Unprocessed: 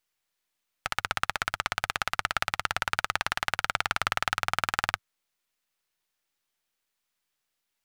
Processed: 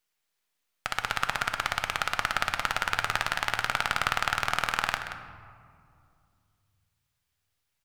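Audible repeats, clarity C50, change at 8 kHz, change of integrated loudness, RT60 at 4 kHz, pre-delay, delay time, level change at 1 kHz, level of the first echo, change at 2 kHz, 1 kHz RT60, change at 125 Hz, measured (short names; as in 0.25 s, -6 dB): 1, 7.0 dB, +0.5 dB, +1.0 dB, 1.1 s, 3 ms, 0.179 s, +1.0 dB, -11.5 dB, +1.0 dB, 2.3 s, +1.0 dB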